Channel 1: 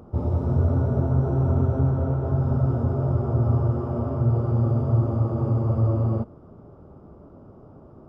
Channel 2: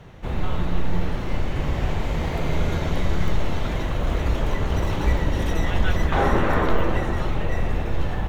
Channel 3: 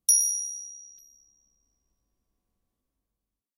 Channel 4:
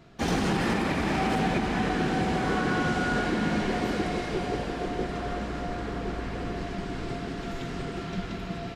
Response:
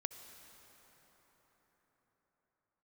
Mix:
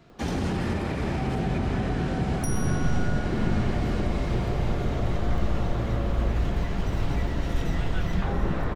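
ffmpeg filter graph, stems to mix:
-filter_complex "[0:a]equalizer=f=110:t=o:w=3:g=-12.5,adelay=100,volume=1[s0];[1:a]adelay=2100,volume=0.422[s1];[2:a]adelay=2350,volume=0.335[s2];[3:a]asubboost=boost=4:cutoff=150,volume=0.841[s3];[s0][s1][s2][s3]amix=inputs=4:normalize=0,acrossover=split=400[s4][s5];[s5]acompressor=threshold=0.0224:ratio=6[s6];[s4][s6]amix=inputs=2:normalize=0"

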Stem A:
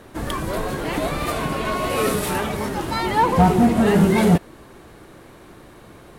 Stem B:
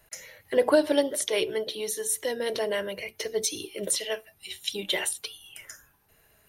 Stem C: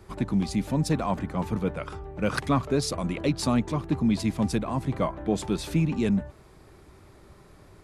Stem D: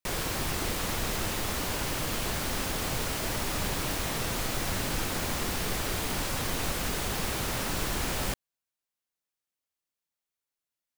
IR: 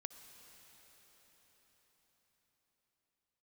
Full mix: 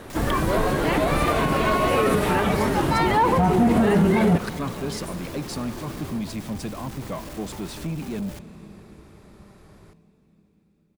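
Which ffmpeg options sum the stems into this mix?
-filter_complex "[0:a]acrossover=split=3100[s0][s1];[s1]acompressor=threshold=0.00891:ratio=4:attack=1:release=60[s2];[s0][s2]amix=inputs=2:normalize=0,volume=1.26,asplit=2[s3][s4];[s4]volume=0.398[s5];[1:a]volume=0.398[s6];[2:a]adelay=2100,volume=0.794,asplit=2[s7][s8];[s8]volume=0.668[s9];[3:a]volume=44.7,asoftclip=hard,volume=0.0224,adelay=50,volume=0.75,asplit=2[s10][s11];[s11]volume=0.0841[s12];[s6][s7][s10]amix=inputs=3:normalize=0,volume=26.6,asoftclip=hard,volume=0.0376,acompressor=threshold=0.00891:ratio=2,volume=1[s13];[4:a]atrim=start_sample=2205[s14];[s5][s9][s12]amix=inputs=3:normalize=0[s15];[s15][s14]afir=irnorm=-1:irlink=0[s16];[s3][s13][s16]amix=inputs=3:normalize=0,alimiter=limit=0.282:level=0:latency=1:release=50"

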